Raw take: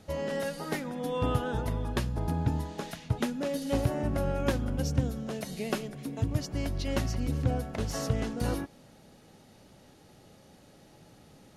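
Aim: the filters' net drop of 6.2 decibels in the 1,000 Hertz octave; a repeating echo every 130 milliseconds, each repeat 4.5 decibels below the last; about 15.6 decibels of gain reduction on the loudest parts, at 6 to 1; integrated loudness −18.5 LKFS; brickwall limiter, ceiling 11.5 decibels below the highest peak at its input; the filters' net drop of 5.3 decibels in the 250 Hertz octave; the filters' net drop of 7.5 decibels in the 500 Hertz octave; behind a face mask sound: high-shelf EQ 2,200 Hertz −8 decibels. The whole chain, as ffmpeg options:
ffmpeg -i in.wav -af "equalizer=frequency=250:width_type=o:gain=-5,equalizer=frequency=500:width_type=o:gain=-6,equalizer=frequency=1000:width_type=o:gain=-4,acompressor=threshold=-41dB:ratio=6,alimiter=level_in=15dB:limit=-24dB:level=0:latency=1,volume=-15dB,highshelf=frequency=2200:gain=-8,aecho=1:1:130|260|390|520|650|780|910|1040|1170:0.596|0.357|0.214|0.129|0.0772|0.0463|0.0278|0.0167|0.01,volume=29dB" out.wav

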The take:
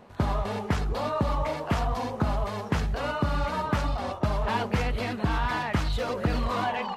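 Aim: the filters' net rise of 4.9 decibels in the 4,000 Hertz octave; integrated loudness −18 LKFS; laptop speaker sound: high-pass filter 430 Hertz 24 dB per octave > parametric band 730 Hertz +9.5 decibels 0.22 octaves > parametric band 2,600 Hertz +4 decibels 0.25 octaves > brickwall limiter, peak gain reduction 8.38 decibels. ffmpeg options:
ffmpeg -i in.wav -af "highpass=frequency=430:width=0.5412,highpass=frequency=430:width=1.3066,equalizer=frequency=730:width_type=o:width=0.22:gain=9.5,equalizer=frequency=2600:width_type=o:width=0.25:gain=4,equalizer=frequency=4000:width_type=o:gain=5.5,volume=12dB,alimiter=limit=-8dB:level=0:latency=1" out.wav

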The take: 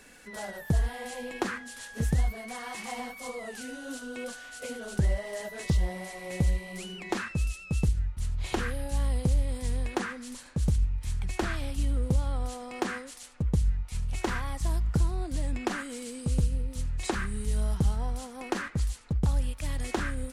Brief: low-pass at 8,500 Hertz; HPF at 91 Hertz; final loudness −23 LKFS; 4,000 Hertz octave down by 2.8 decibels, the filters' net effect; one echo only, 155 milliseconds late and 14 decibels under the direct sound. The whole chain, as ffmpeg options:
ffmpeg -i in.wav -af "highpass=91,lowpass=8500,equalizer=frequency=4000:width_type=o:gain=-3.5,aecho=1:1:155:0.2,volume=12dB" out.wav

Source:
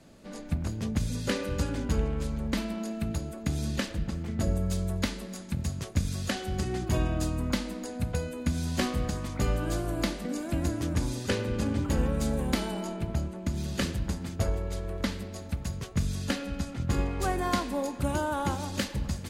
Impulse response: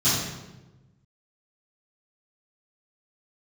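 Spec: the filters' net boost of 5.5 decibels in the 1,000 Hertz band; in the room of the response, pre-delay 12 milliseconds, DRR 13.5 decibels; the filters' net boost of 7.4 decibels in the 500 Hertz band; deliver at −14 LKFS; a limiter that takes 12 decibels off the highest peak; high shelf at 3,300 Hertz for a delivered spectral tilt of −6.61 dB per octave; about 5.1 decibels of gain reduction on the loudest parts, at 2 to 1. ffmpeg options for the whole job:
-filter_complex "[0:a]equalizer=frequency=500:width_type=o:gain=8,equalizer=frequency=1000:width_type=o:gain=5,highshelf=frequency=3300:gain=-8.5,acompressor=threshold=-30dB:ratio=2,alimiter=level_in=3dB:limit=-24dB:level=0:latency=1,volume=-3dB,asplit=2[link_01][link_02];[1:a]atrim=start_sample=2205,adelay=12[link_03];[link_02][link_03]afir=irnorm=-1:irlink=0,volume=-28.5dB[link_04];[link_01][link_04]amix=inputs=2:normalize=0,volume=21.5dB"

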